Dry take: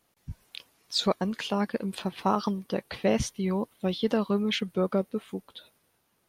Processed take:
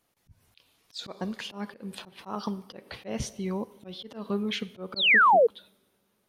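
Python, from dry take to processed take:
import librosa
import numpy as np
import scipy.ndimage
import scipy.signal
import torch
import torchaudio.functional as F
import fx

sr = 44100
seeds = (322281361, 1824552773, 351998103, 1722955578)

y = fx.rev_double_slope(x, sr, seeds[0], early_s=0.8, late_s=3.1, knee_db=-19, drr_db=15.5)
y = fx.spec_paint(y, sr, seeds[1], shape='fall', start_s=4.96, length_s=0.51, low_hz=430.0, high_hz=4600.0, level_db=-15.0)
y = fx.auto_swell(y, sr, attack_ms=170.0)
y = y * 10.0 ** (-3.0 / 20.0)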